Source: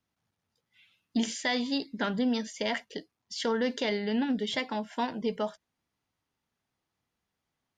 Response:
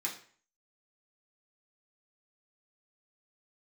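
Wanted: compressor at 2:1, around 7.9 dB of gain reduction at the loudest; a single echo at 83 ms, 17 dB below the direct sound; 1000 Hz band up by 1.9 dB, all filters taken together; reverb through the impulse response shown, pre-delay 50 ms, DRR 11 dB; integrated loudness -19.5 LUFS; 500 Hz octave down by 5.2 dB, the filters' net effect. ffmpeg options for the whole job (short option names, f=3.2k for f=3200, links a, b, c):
-filter_complex "[0:a]equalizer=f=500:t=o:g=-7.5,equalizer=f=1k:t=o:g=5,acompressor=threshold=-40dB:ratio=2,aecho=1:1:83:0.141,asplit=2[a][b];[1:a]atrim=start_sample=2205,adelay=50[c];[b][c]afir=irnorm=-1:irlink=0,volume=-13.5dB[d];[a][d]amix=inputs=2:normalize=0,volume=19dB"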